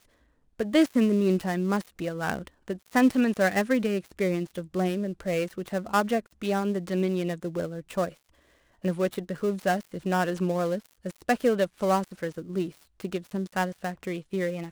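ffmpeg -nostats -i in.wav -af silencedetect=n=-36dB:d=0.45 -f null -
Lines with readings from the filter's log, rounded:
silence_start: 0.00
silence_end: 0.60 | silence_duration: 0.60
silence_start: 8.09
silence_end: 8.84 | silence_duration: 0.75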